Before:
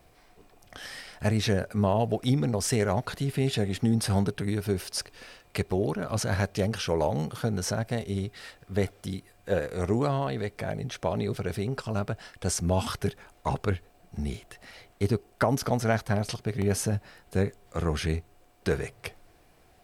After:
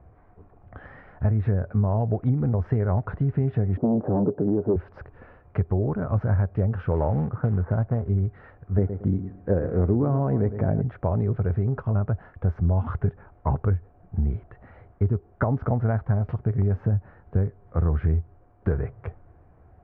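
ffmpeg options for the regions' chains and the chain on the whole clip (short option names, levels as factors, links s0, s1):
-filter_complex "[0:a]asettb=1/sr,asplit=3[s0][s1][s2];[s0]atrim=end=3.774[s3];[s1]atrim=start=3.77:end=4.76,asetpts=PTS-STARTPTS,afade=t=in:d=0.004:c=qsin,afade=t=out:st=0.986:d=0.004:c=qsin,aeval=exprs='0.237*sin(PI/2*2.51*val(0)/0.237)':c=same,asuperpass=centerf=400:order=4:qfactor=0.94[s4];[s2]atrim=start=4.756[s5];[s3][s4]acrossfade=d=0.004:c1=hsin:c2=qsin[s6];[s6][s5]acrossfade=d=0.004:c1=qsin:c2=hsin,asettb=1/sr,asplit=3[s7][s8][s9];[s7]atrim=end=6.914[s10];[s8]atrim=start=6.91:end=8.09,asetpts=PTS-STARTPTS,afade=t=in:d=0.004:c=qsin,afade=t=out:st=1.176:d=0.004:c=qsin,lowpass=f=1600:w=0.5412,lowpass=f=1600:w=1.3066,acrusher=bits=4:mode=log:mix=0:aa=0.000001,aemphasis=mode=production:type=75kf[s11];[s9]atrim=start=8.086[s12];[s10][s11]acrossfade=d=0.004:c1=hsin:c2=qsin[s13];[s13][s12]acrossfade=d=0.004:c1=qsin:c2=hsin,asettb=1/sr,asplit=3[s14][s15][s16];[s14]atrim=end=8.784[s17];[s15]atrim=start=8.78:end=10.82,asetpts=PTS-STARTPTS,afade=t=in:d=0.004:c=qsin,afade=t=out:st=2.036:d=0.004:c=qsin,equalizer=f=280:t=o:w=1.9:g=10,asplit=2[s18][s19];[s19]adelay=111,lowpass=f=3600:p=1,volume=0.224,asplit=2[s20][s21];[s21]adelay=111,lowpass=f=3600:p=1,volume=0.23,asplit=2[s22][s23];[s23]adelay=111,lowpass=f=3600:p=1,volume=0.23[s24];[s18][s20][s22][s24]amix=inputs=4:normalize=0,atrim=end_sample=89964[s25];[s16]atrim=start=10.816[s26];[s17][s25]acrossfade=d=0.004:c1=hsin:c2=qsin[s27];[s27][s26]acrossfade=d=0.004:c1=qsin:c2=hsin,lowpass=f=1500:w=0.5412,lowpass=f=1500:w=1.3066,equalizer=f=82:w=0.86:g=13,acompressor=threshold=0.1:ratio=6,volume=1.19"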